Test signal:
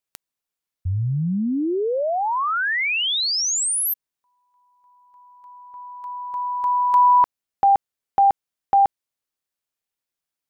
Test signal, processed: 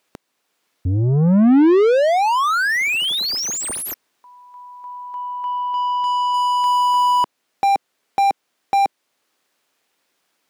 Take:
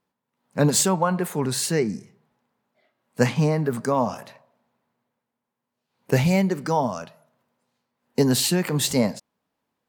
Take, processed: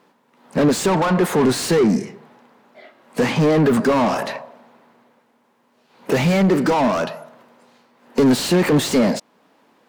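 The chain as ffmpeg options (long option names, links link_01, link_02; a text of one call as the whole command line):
ffmpeg -i in.wav -filter_complex "[0:a]alimiter=limit=-14.5dB:level=0:latency=1:release=493,asplit=2[link_01][link_02];[link_02]highpass=frequency=720:poles=1,volume=29dB,asoftclip=type=tanh:threshold=-14.5dB[link_03];[link_01][link_03]amix=inputs=2:normalize=0,lowpass=frequency=3500:poles=1,volume=-6dB,equalizer=frequency=270:width=0.62:gain=8.5" out.wav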